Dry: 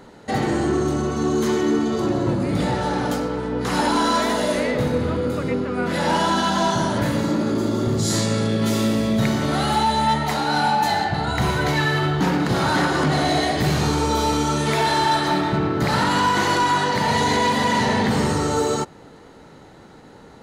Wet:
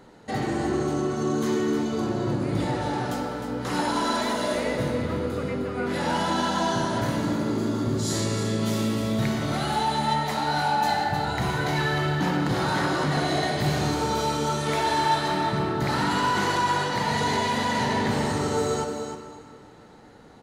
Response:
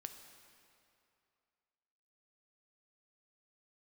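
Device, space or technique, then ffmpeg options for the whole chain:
cave: -filter_complex "[0:a]aecho=1:1:308:0.355[link_01];[1:a]atrim=start_sample=2205[link_02];[link_01][link_02]afir=irnorm=-1:irlink=0,volume=-1dB"

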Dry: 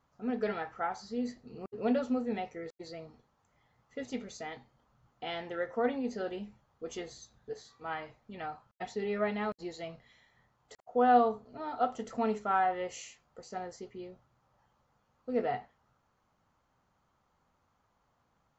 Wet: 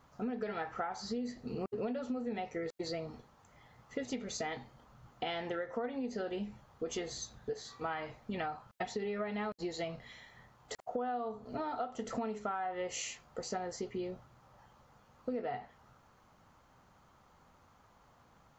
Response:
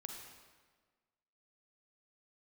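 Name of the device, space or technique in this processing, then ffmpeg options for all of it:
serial compression, leveller first: -af "acompressor=threshold=-34dB:ratio=2.5,acompressor=threshold=-45dB:ratio=6,volume=10dB"

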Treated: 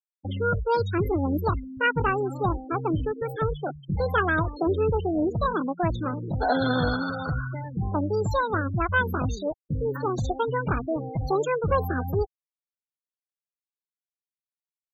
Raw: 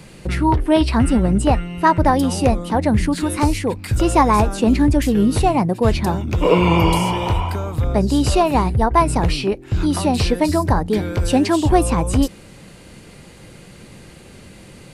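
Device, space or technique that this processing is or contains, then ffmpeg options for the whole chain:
chipmunk voice: -af "asetrate=66075,aresample=44100,atempo=0.66742,afftfilt=real='re*gte(hypot(re,im),0.126)':imag='im*gte(hypot(re,im),0.126)':win_size=1024:overlap=0.75,volume=-9dB"

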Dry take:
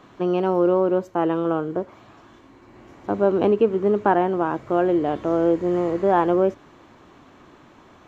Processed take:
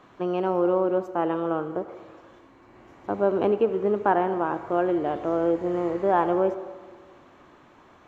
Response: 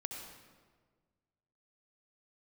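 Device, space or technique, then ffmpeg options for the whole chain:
filtered reverb send: -filter_complex "[0:a]asplit=2[link_01][link_02];[link_02]highpass=370,lowpass=3100[link_03];[1:a]atrim=start_sample=2205[link_04];[link_03][link_04]afir=irnorm=-1:irlink=0,volume=-4dB[link_05];[link_01][link_05]amix=inputs=2:normalize=0,volume=-5.5dB"

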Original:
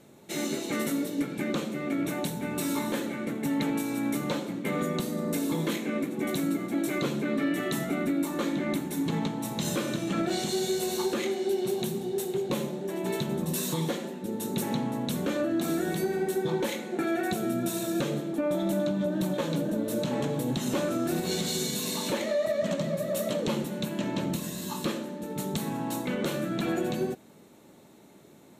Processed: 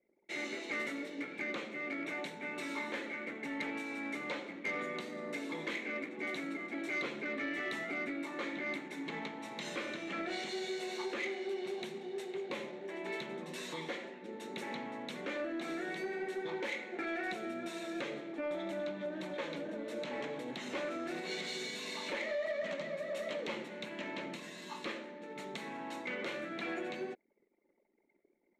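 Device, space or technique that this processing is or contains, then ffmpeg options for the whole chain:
intercom: -af "highpass=350,lowpass=4700,equalizer=frequency=2100:width_type=o:width=0.55:gain=11.5,asoftclip=type=tanh:threshold=-21dB,anlmdn=0.00631,volume=-7.5dB"

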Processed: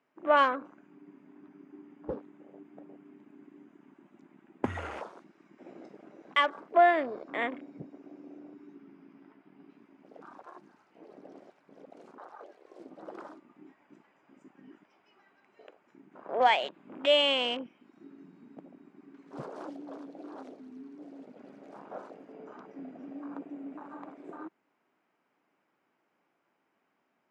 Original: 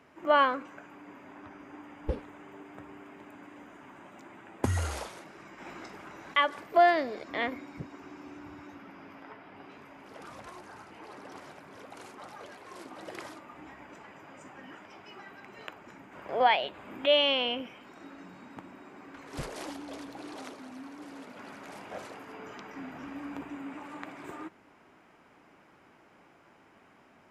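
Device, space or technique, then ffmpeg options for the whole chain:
over-cleaned archive recording: -af "highpass=180,lowpass=7300,afwtdn=0.01"

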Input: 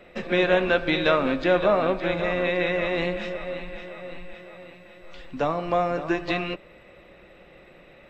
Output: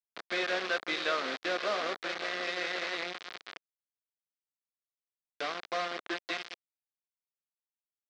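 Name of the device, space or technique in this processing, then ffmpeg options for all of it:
hand-held game console: -af "acrusher=bits=3:mix=0:aa=0.000001,highpass=500,equalizer=frequency=570:width_type=q:width=4:gain=-6,equalizer=frequency=900:width_type=q:width=4:gain=-9,equalizer=frequency=2700:width_type=q:width=4:gain=-4,lowpass=frequency=4600:width=0.5412,lowpass=frequency=4600:width=1.3066,volume=-6.5dB"

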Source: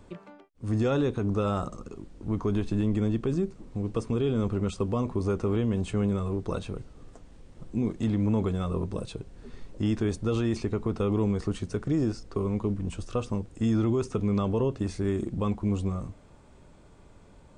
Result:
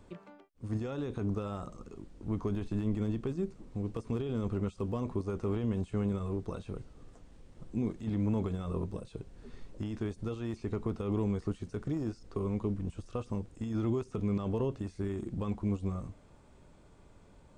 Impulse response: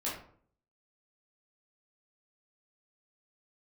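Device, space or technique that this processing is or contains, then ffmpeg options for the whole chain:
de-esser from a sidechain: -filter_complex "[0:a]asplit=2[link_01][link_02];[link_02]highpass=5900,apad=whole_len=774969[link_03];[link_01][link_03]sidechaincompress=threshold=-60dB:ratio=4:attack=1.5:release=30,volume=-4.5dB"

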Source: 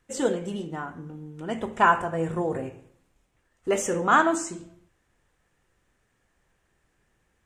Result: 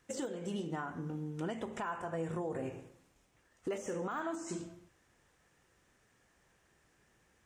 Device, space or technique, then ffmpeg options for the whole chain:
broadcast voice chain: -af "highpass=frequency=86:poles=1,deesser=0.9,acompressor=threshold=-33dB:ratio=4,equalizer=frequency=5600:width_type=o:width=0.61:gain=4,alimiter=level_in=5.5dB:limit=-24dB:level=0:latency=1:release=291,volume=-5.5dB,volume=1dB"

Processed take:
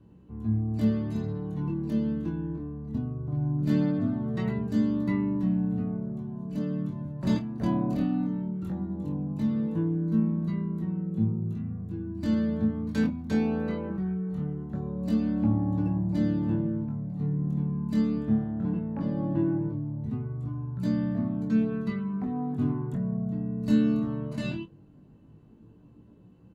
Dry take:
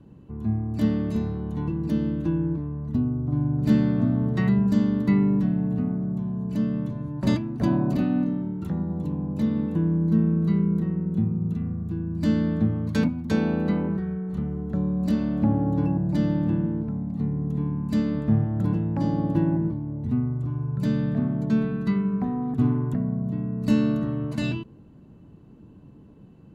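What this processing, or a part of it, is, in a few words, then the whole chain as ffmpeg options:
double-tracked vocal: -filter_complex "[0:a]asplit=2[link_01][link_02];[link_02]adelay=27,volume=-10dB[link_03];[link_01][link_03]amix=inputs=2:normalize=0,flanger=delay=17:depth=6.1:speed=0.19,asettb=1/sr,asplit=3[link_04][link_05][link_06];[link_04]atrim=end=18.514[link_07];[link_05]atrim=start=18.51:end=19.6,asetpts=PTS-STARTPTS,afade=type=in:duration=0.004:curve=qsin,afade=type=out:start_time=1.086:duration=0.004:curve=qsin,lowpass=2900[link_08];[link_06]atrim=start=19.596[link_09];[link_07][link_08]acrossfade=duration=0.004:curve1=hsin:curve2=qsin[link_10];[link_10][link_09]acrossfade=duration=0.004:curve1=qsin:curve2=hsin,volume=-2.5dB"

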